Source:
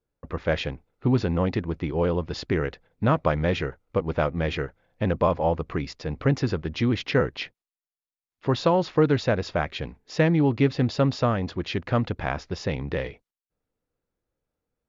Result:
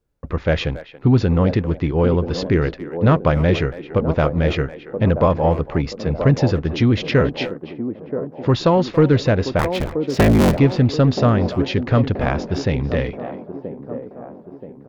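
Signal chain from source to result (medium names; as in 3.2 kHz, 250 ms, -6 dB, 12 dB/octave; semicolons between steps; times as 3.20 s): 9.59–10.59 s: cycle switcher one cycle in 3, inverted; bass shelf 200 Hz +6.5 dB; speakerphone echo 280 ms, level -15 dB; saturation -8.5 dBFS, distortion -22 dB; on a send: feedback echo behind a band-pass 978 ms, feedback 49%, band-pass 420 Hz, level -7 dB; 5.70–6.18 s: on the sum: three bands expanded up and down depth 40%; trim +5 dB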